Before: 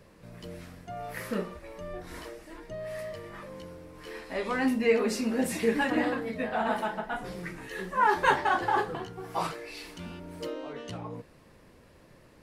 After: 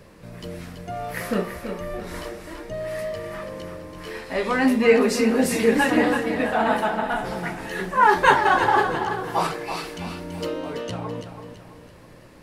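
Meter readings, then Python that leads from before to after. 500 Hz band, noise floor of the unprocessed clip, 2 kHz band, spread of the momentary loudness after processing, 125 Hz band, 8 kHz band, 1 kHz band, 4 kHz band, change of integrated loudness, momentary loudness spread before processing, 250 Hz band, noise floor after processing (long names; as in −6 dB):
+8.0 dB, −57 dBFS, +8.5 dB, 19 LU, +8.0 dB, +8.0 dB, +8.0 dB, +8.0 dB, +8.0 dB, 19 LU, +8.0 dB, −47 dBFS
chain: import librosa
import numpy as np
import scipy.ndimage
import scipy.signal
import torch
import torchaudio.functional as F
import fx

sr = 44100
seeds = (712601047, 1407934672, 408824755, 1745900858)

y = fx.echo_feedback(x, sr, ms=332, feedback_pct=41, wet_db=-8.5)
y = y * 10.0 ** (7.5 / 20.0)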